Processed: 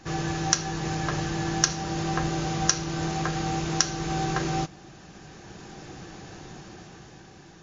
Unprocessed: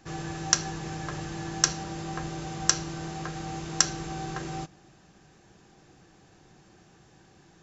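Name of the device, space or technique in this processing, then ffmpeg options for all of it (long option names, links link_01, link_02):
low-bitrate web radio: -af "dynaudnorm=framelen=360:gausssize=9:maxgain=10dB,alimiter=limit=-9dB:level=0:latency=1:release=341,volume=7dB" -ar 16000 -c:a libmp3lame -b:a 32k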